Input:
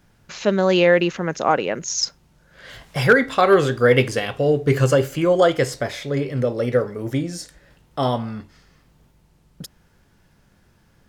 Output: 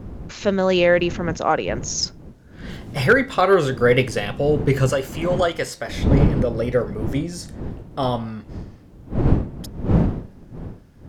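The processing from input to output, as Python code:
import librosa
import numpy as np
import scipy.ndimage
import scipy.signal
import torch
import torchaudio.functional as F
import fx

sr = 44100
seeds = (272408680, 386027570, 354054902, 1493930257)

y = fx.dmg_wind(x, sr, seeds[0], corner_hz=200.0, level_db=-24.0)
y = fx.low_shelf(y, sr, hz=440.0, db=-10.0, at=(4.89, 5.89))
y = y * 10.0 ** (-1.0 / 20.0)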